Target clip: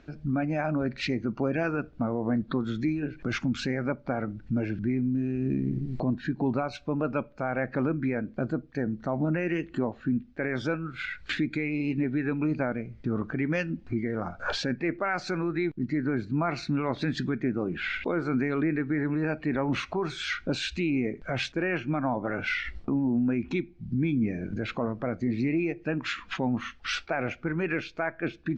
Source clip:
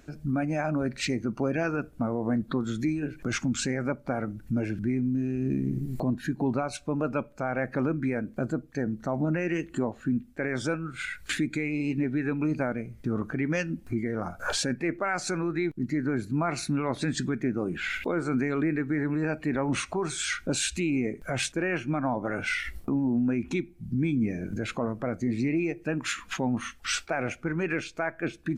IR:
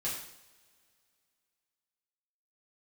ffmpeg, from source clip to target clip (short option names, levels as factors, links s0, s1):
-af "lowpass=f=4700:w=0.5412,lowpass=f=4700:w=1.3066"